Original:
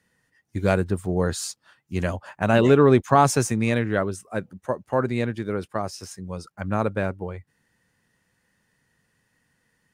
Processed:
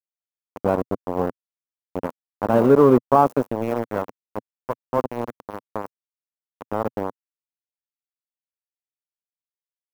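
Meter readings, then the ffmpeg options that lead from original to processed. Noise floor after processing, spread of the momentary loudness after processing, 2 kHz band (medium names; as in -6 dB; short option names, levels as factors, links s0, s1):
under -85 dBFS, 20 LU, -8.5 dB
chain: -af "aeval=exprs='val(0)*gte(abs(val(0)),0.133)':c=same,equalizer=f=125:t=o:w=1:g=5,equalizer=f=250:t=o:w=1:g=10,equalizer=f=500:t=o:w=1:g=11,equalizer=f=1000:t=o:w=1:g=12,equalizer=f=2000:t=o:w=1:g=-4,equalizer=f=4000:t=o:w=1:g=-8,equalizer=f=8000:t=o:w=1:g=-7,volume=0.299"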